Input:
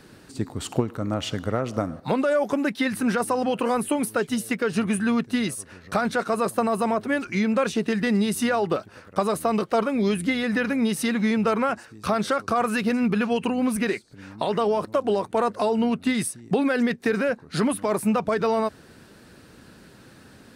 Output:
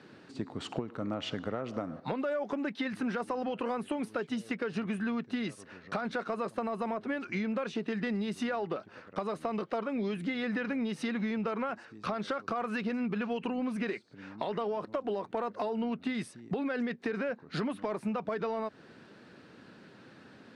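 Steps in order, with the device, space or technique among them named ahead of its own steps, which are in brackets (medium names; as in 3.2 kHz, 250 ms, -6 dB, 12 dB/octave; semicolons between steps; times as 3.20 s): AM radio (band-pass 150–3900 Hz; compression, threshold -26 dBFS, peak gain reduction 9.5 dB; saturation -16 dBFS, distortion -27 dB); trim -3.5 dB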